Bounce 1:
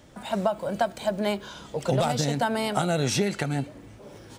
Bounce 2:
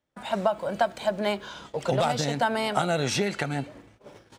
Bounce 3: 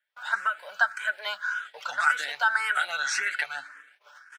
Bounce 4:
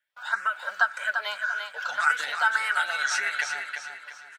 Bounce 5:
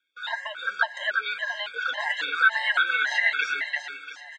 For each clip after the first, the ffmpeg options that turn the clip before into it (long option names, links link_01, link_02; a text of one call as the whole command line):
ffmpeg -i in.wav -af "aemphasis=mode=reproduction:type=cd,agate=range=-28dB:threshold=-44dB:ratio=16:detection=peak,lowshelf=frequency=500:gain=-8,volume=3.5dB" out.wav
ffmpeg -i in.wav -filter_complex "[0:a]highpass=frequency=1500:width_type=q:width=7.3,aecho=1:1:6.8:0.41,asplit=2[link_01][link_02];[link_02]afreqshift=1.8[link_03];[link_01][link_03]amix=inputs=2:normalize=1" out.wav
ffmpeg -i in.wav -af "aecho=1:1:344|688|1032|1376:0.473|0.18|0.0683|0.026" out.wav
ffmpeg -i in.wav -filter_complex "[0:a]highpass=250,equalizer=frequency=290:width_type=q:width=4:gain=8,equalizer=frequency=1200:width_type=q:width=4:gain=-8,equalizer=frequency=2100:width_type=q:width=4:gain=4,equalizer=frequency=3500:width_type=q:width=4:gain=8,equalizer=frequency=5500:width_type=q:width=4:gain=-4,lowpass=frequency=6800:width=0.5412,lowpass=frequency=6800:width=1.3066,acrossover=split=3500[link_01][link_02];[link_02]acompressor=threshold=-47dB:ratio=4:attack=1:release=60[link_03];[link_01][link_03]amix=inputs=2:normalize=0,afftfilt=real='re*gt(sin(2*PI*1.8*pts/sr)*(1-2*mod(floor(b*sr/1024/540),2)),0)':imag='im*gt(sin(2*PI*1.8*pts/sr)*(1-2*mod(floor(b*sr/1024/540),2)),0)':win_size=1024:overlap=0.75,volume=6.5dB" out.wav